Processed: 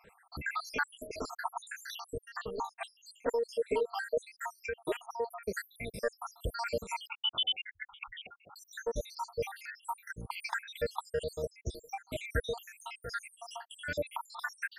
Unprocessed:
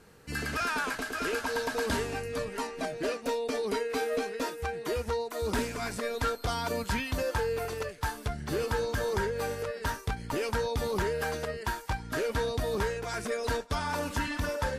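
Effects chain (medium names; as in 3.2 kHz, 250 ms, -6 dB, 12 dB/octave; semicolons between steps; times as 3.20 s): random holes in the spectrogram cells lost 83%; 7.07–8.56 s: frequency inversion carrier 3.5 kHz; ten-band graphic EQ 250 Hz -5 dB, 500 Hz +4 dB, 2 kHz +4 dB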